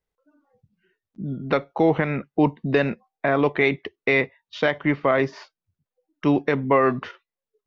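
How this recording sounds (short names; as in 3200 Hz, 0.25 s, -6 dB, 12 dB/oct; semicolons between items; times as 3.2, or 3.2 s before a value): noise floor -90 dBFS; spectral tilt -5.0 dB/oct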